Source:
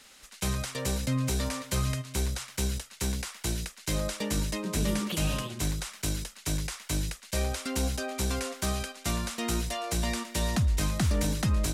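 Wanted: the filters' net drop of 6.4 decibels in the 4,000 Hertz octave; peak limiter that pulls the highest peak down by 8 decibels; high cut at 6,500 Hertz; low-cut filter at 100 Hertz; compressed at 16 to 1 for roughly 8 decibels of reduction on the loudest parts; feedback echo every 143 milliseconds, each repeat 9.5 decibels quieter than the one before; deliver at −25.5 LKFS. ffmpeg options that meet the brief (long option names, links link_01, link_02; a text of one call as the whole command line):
ffmpeg -i in.wav -af "highpass=100,lowpass=6500,equalizer=frequency=4000:width_type=o:gain=-7.5,acompressor=threshold=-32dB:ratio=16,alimiter=level_in=6dB:limit=-24dB:level=0:latency=1,volume=-6dB,aecho=1:1:143|286|429|572:0.335|0.111|0.0365|0.012,volume=14dB" out.wav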